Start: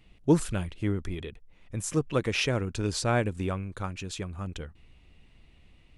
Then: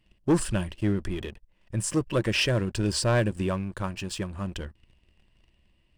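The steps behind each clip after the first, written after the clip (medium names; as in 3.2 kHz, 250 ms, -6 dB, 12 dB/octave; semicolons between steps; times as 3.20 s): rippled EQ curve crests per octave 1.3, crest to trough 7 dB; waveshaping leveller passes 2; trim -4.5 dB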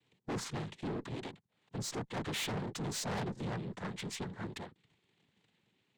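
noise-vocoded speech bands 6; valve stage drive 31 dB, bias 0.3; trim -3.5 dB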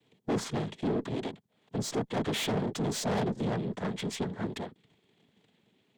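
small resonant body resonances 240/430/630/3300 Hz, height 7 dB, ringing for 20 ms; trim +3 dB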